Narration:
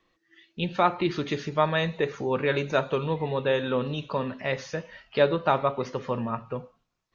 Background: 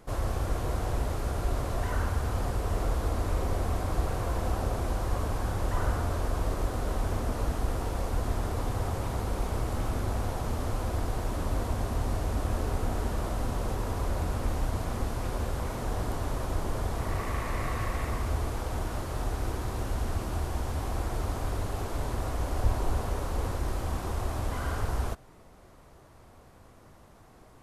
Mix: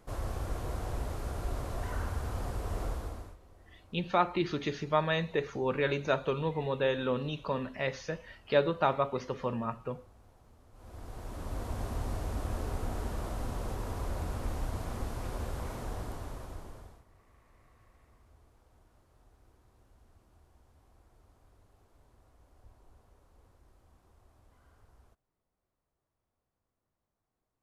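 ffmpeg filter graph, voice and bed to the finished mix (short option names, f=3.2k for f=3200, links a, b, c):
-filter_complex "[0:a]adelay=3350,volume=-4.5dB[a];[1:a]volume=17.5dB,afade=t=out:st=2.85:d=0.52:silence=0.0707946,afade=t=in:st=10.72:d=1.12:silence=0.0668344,afade=t=out:st=15.72:d=1.32:silence=0.0473151[b];[a][b]amix=inputs=2:normalize=0"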